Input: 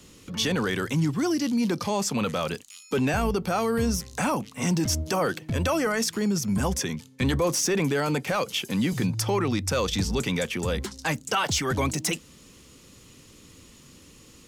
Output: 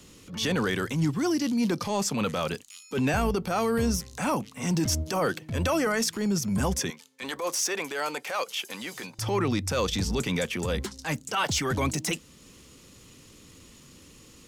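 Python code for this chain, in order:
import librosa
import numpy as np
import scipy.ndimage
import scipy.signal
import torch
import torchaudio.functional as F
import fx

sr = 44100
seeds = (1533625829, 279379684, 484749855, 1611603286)

y = fx.highpass(x, sr, hz=560.0, slope=12, at=(6.9, 9.19))
y = fx.transient(y, sr, attack_db=-8, sustain_db=-2)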